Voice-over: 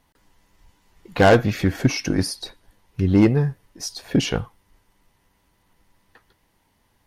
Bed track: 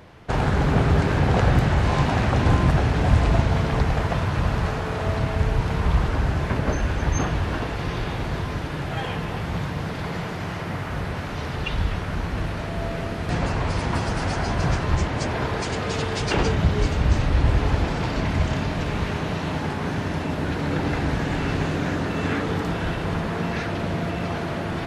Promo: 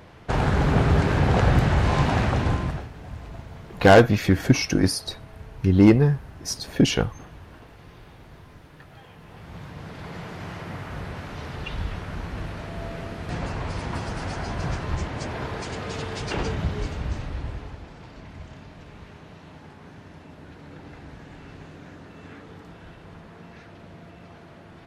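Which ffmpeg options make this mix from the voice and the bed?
-filter_complex "[0:a]adelay=2650,volume=1.12[s0];[1:a]volume=4.73,afade=t=out:st=2.18:d=0.71:silence=0.105925,afade=t=in:st=9.17:d=1.29:silence=0.199526,afade=t=out:st=16.54:d=1.24:silence=0.223872[s1];[s0][s1]amix=inputs=2:normalize=0"

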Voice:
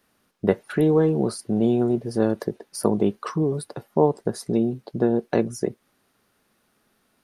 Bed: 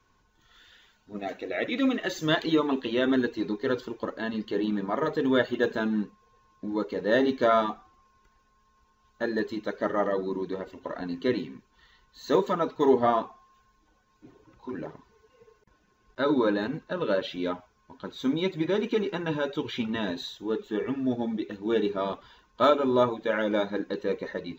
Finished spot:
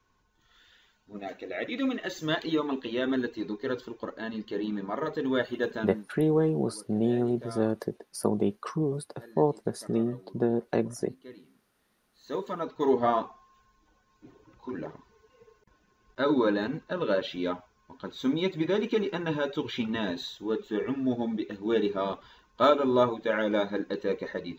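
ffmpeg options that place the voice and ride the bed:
-filter_complex "[0:a]adelay=5400,volume=0.531[s0];[1:a]volume=6.68,afade=t=out:st=5.75:d=0.33:silence=0.141254,afade=t=in:st=12.03:d=1.23:silence=0.0944061[s1];[s0][s1]amix=inputs=2:normalize=0"

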